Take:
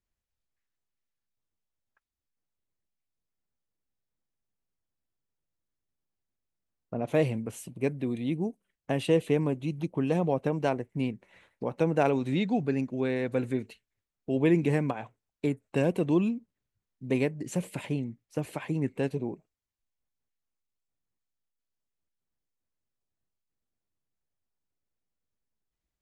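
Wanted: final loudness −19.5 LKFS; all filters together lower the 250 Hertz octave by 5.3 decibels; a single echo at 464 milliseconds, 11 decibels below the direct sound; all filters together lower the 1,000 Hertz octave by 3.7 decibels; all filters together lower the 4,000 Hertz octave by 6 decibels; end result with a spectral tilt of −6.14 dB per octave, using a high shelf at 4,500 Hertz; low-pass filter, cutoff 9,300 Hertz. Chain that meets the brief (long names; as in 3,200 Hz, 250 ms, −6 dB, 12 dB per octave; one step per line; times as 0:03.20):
low-pass filter 9,300 Hz
parametric band 250 Hz −7 dB
parametric band 1,000 Hz −4.5 dB
parametric band 4,000 Hz −5.5 dB
high-shelf EQ 4,500 Hz −5.5 dB
single-tap delay 464 ms −11 dB
level +13.5 dB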